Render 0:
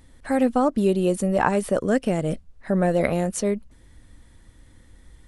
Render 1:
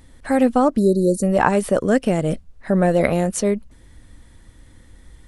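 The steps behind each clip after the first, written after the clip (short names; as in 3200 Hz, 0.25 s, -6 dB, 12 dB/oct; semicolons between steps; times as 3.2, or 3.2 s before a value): spectral delete 0.78–1.23, 660–3800 Hz; gain +4 dB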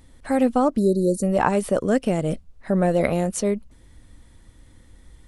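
bell 1700 Hz -3 dB 0.41 oct; gain -3 dB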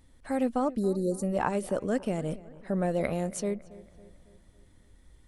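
darkening echo 0.277 s, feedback 51%, low-pass 3100 Hz, level -19 dB; gain -8.5 dB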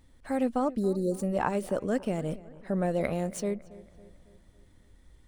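median filter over 3 samples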